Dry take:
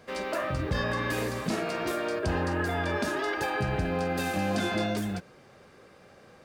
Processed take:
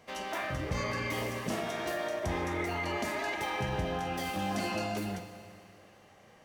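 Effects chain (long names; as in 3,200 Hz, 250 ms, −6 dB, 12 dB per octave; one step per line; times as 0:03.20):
formants moved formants +4 semitones
four-comb reverb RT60 2.4 s, combs from 33 ms, DRR 8 dB
level −5 dB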